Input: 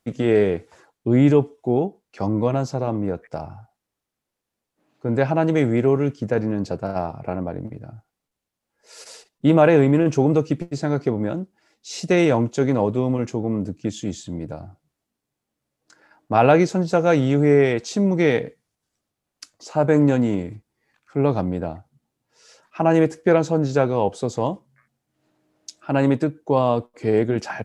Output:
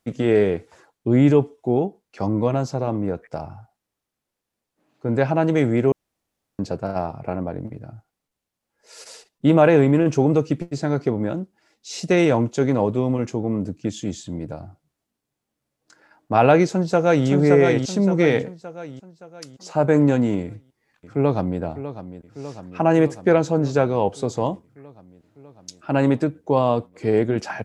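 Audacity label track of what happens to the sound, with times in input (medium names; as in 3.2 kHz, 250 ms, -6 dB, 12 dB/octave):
5.920000	6.590000	room tone
16.680000	17.280000	echo throw 570 ms, feedback 45%, level -4 dB
20.430000	21.610000	echo throw 600 ms, feedback 75%, level -12.5 dB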